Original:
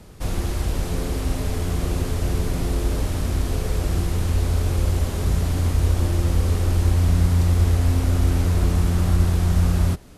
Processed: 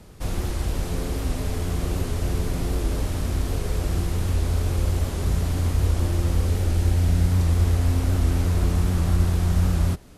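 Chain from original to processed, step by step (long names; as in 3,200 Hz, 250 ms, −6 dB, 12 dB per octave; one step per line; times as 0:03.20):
0:06.46–0:07.32: parametric band 1,100 Hz −8 dB 0.23 octaves
wow of a warped record 78 rpm, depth 100 cents
level −2 dB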